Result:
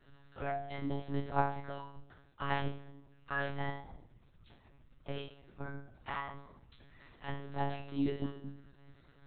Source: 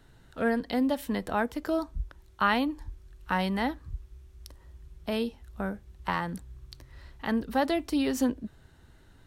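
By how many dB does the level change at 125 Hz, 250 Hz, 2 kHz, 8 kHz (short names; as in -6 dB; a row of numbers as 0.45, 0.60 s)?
-1.0 dB, -12.0 dB, -8.5 dB, under -30 dB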